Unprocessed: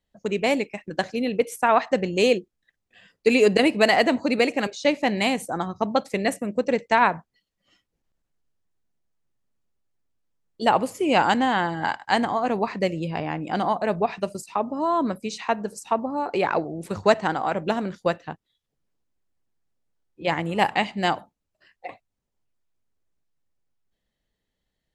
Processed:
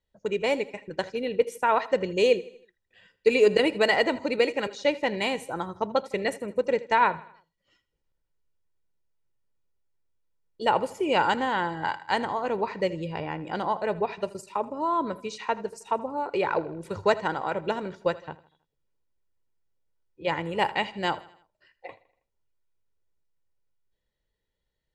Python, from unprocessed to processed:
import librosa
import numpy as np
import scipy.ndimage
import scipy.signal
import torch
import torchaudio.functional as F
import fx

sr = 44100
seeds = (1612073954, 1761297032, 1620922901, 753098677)

p1 = fx.high_shelf(x, sr, hz=8200.0, db=-9.5)
p2 = p1 + 0.47 * np.pad(p1, (int(2.1 * sr / 1000.0), 0))[:len(p1)]
p3 = p2 + fx.echo_feedback(p2, sr, ms=80, feedback_pct=48, wet_db=-19.0, dry=0)
y = p3 * 10.0 ** (-4.0 / 20.0)